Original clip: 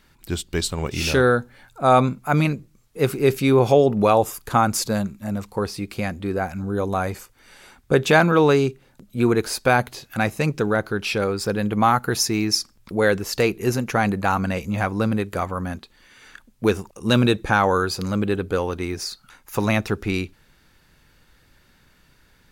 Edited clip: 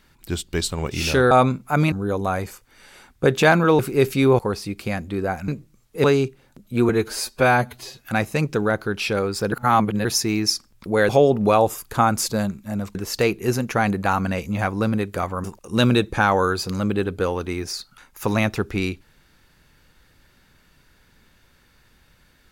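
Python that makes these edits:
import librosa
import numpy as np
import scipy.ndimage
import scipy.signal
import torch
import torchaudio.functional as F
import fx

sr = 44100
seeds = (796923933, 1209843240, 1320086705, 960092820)

y = fx.edit(x, sr, fx.cut(start_s=1.31, length_s=0.57),
    fx.swap(start_s=2.49, length_s=0.56, other_s=6.6, other_length_s=1.87),
    fx.move(start_s=3.65, length_s=1.86, to_s=13.14),
    fx.stretch_span(start_s=9.32, length_s=0.76, factor=1.5),
    fx.reverse_span(start_s=11.57, length_s=0.53),
    fx.cut(start_s=15.63, length_s=1.13), tone=tone)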